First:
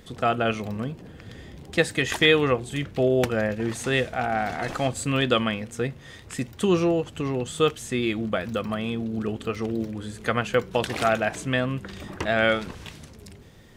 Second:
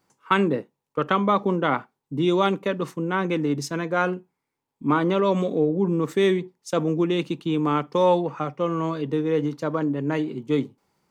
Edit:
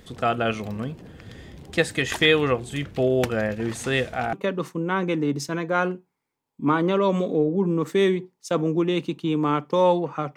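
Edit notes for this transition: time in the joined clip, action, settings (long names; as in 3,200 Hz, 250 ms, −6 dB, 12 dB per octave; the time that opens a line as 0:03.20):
first
0:04.33: continue with second from 0:02.55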